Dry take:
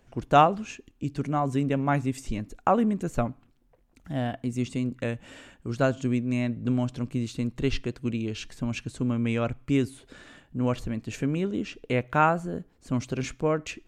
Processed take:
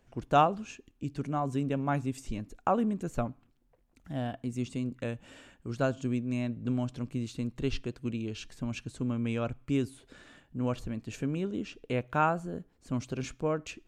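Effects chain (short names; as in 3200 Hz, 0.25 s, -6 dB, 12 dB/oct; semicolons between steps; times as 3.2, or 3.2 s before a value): dynamic EQ 2000 Hz, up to -6 dB, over -54 dBFS, Q 4.9; gain -5 dB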